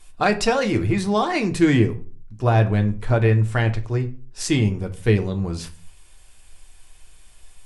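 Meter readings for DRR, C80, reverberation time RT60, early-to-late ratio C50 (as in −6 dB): 5.0 dB, 20.0 dB, 0.40 s, 16.0 dB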